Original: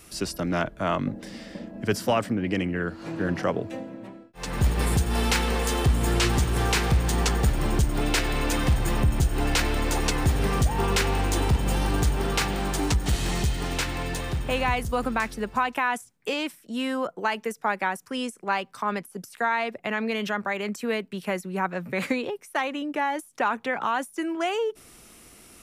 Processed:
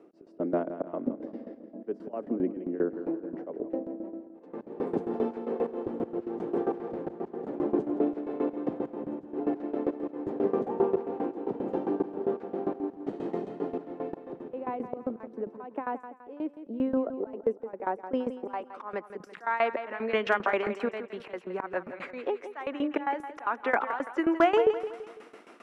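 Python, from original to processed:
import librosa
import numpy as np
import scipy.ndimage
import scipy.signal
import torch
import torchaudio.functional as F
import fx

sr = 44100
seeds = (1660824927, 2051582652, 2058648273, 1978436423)

p1 = scipy.signal.sosfilt(scipy.signal.butter(4, 280.0, 'highpass', fs=sr, output='sos'), x)
p2 = fx.high_shelf(p1, sr, hz=4900.0, db=9.5)
p3 = fx.auto_swell(p2, sr, attack_ms=290.0)
p4 = fx.filter_sweep_lowpass(p3, sr, from_hz=450.0, to_hz=1500.0, start_s=17.45, end_s=19.4, q=0.94)
p5 = fx.tremolo_shape(p4, sr, shape='saw_down', hz=7.5, depth_pct=90)
p6 = np.clip(p5, -10.0 ** (-21.5 / 20.0), 10.0 ** (-21.5 / 20.0))
p7 = p6 + fx.echo_feedback(p6, sr, ms=167, feedback_pct=42, wet_db=-11.5, dry=0)
y = p7 * librosa.db_to_amplitude(8.0)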